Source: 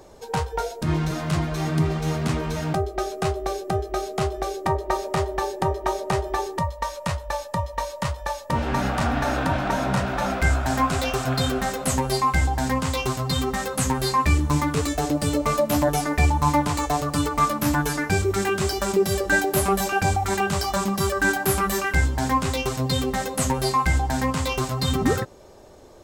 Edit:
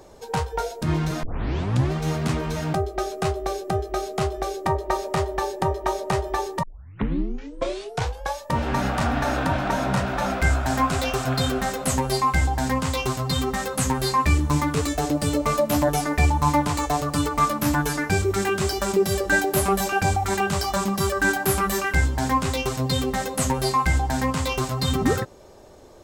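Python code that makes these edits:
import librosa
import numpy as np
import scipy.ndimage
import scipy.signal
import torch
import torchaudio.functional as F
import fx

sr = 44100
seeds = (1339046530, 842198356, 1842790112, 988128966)

y = fx.edit(x, sr, fx.tape_start(start_s=1.23, length_s=0.69),
    fx.tape_start(start_s=6.63, length_s=1.74), tone=tone)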